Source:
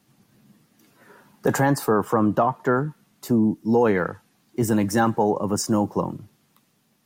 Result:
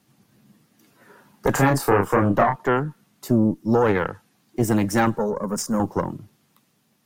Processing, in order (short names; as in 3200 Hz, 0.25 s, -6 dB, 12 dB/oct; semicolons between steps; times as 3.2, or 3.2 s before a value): 5.18–5.8 fixed phaser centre 500 Hz, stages 8; added harmonics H 2 -7 dB, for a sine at -8 dBFS; 1.52–2.56 doubler 30 ms -4 dB